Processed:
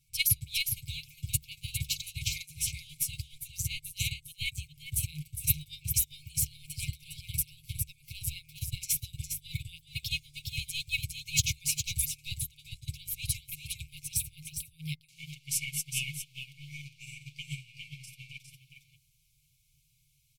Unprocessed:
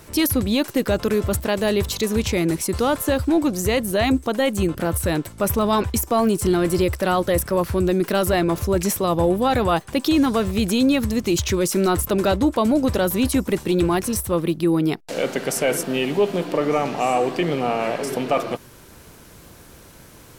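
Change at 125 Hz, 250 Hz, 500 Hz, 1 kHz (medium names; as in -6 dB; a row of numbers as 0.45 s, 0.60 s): -11.0 dB, under -30 dB, under -40 dB, under -40 dB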